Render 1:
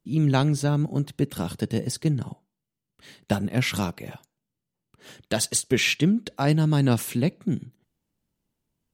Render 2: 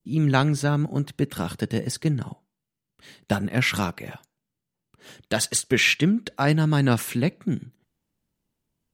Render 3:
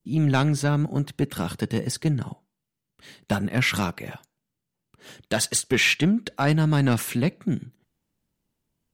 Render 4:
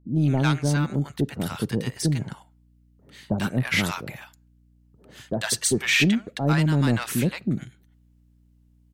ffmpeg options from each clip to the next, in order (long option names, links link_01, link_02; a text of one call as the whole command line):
ffmpeg -i in.wav -af "adynamicequalizer=threshold=0.00794:dfrequency=1600:dqfactor=1:tfrequency=1600:tqfactor=1:attack=5:release=100:ratio=0.375:range=3.5:mode=boostabove:tftype=bell" out.wav
ffmpeg -i in.wav -af "asoftclip=type=tanh:threshold=-12.5dB,volume=1dB" out.wav
ffmpeg -i in.wav -filter_complex "[0:a]acrossover=split=790[link_01][link_02];[link_02]adelay=100[link_03];[link_01][link_03]amix=inputs=2:normalize=0,aeval=exprs='val(0)+0.00141*(sin(2*PI*60*n/s)+sin(2*PI*2*60*n/s)/2+sin(2*PI*3*60*n/s)/3+sin(2*PI*4*60*n/s)/4+sin(2*PI*5*60*n/s)/5)':channel_layout=same" out.wav